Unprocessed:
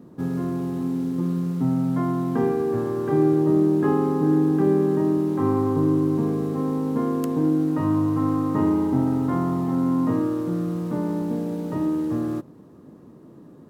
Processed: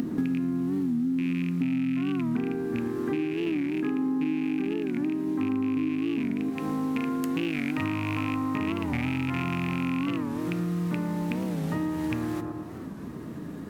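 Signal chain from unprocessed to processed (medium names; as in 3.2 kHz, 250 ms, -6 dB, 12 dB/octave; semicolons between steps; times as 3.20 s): rattle on loud lows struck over -22 dBFS, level -22 dBFS; upward compressor, threshold -35 dBFS; peaking EQ 270 Hz +9 dB 0.88 oct, from 6.50 s -3.5 dB; bucket-brigade echo 114 ms, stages 1024, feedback 58%, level -6 dB; two-slope reverb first 0.34 s, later 2.6 s, from -19 dB, DRR 13 dB; compression 16:1, threshold -30 dBFS, peak gain reduction 24 dB; graphic EQ 125/500/1000/2000 Hz -5/-8/-5/+6 dB; warped record 45 rpm, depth 160 cents; trim +8.5 dB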